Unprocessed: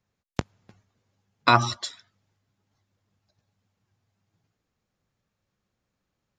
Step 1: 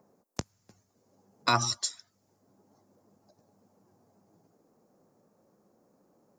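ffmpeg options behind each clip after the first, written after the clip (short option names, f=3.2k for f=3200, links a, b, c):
-filter_complex "[0:a]acrossover=split=200|900[a][b][c];[b]acompressor=mode=upward:threshold=-37dB:ratio=2.5[d];[a][d][c]amix=inputs=3:normalize=0,aexciter=amount=5.6:drive=5.1:freq=4.8k,volume=-7.5dB"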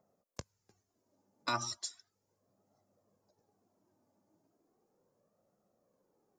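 -af "flanger=delay=1.5:depth=1.9:regen=33:speed=0.36:shape=sinusoidal,volume=-5.5dB"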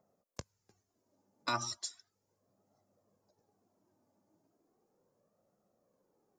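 -af anull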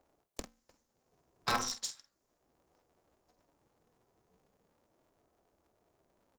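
-filter_complex "[0:a]bandreject=f=50:t=h:w=6,bandreject=f=100:t=h:w=6,asplit=2[a][b];[b]adelay=48,volume=-10.5dB[c];[a][c]amix=inputs=2:normalize=0,aeval=exprs='val(0)*sgn(sin(2*PI*130*n/s))':c=same,volume=2dB"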